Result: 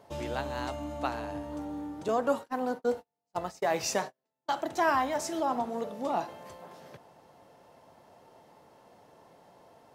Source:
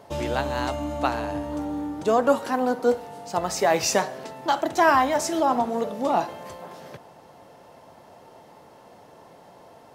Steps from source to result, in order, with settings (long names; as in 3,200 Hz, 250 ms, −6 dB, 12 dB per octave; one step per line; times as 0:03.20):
0:02.08–0:04.54: noise gate −26 dBFS, range −41 dB
level −8 dB